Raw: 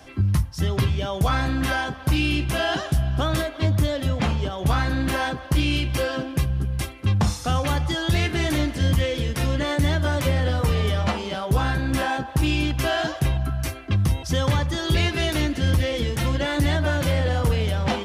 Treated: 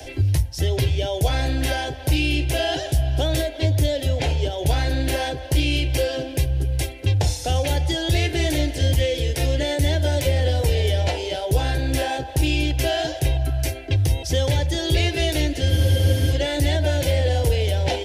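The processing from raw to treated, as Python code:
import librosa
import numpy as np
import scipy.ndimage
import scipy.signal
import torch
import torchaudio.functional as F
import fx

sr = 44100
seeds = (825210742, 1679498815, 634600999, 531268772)

y = fx.fixed_phaser(x, sr, hz=490.0, stages=4)
y = fx.spec_freeze(y, sr, seeds[0], at_s=15.71, hold_s=0.61)
y = fx.band_squash(y, sr, depth_pct=40)
y = y * librosa.db_to_amplitude(4.0)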